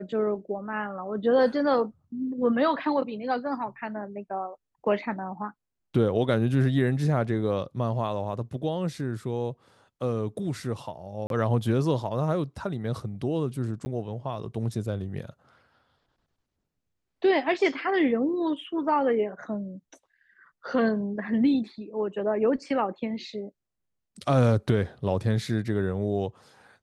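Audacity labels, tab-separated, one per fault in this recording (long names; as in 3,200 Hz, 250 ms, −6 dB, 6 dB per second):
11.270000	11.300000	drop-out 32 ms
13.850000	13.860000	drop-out 10 ms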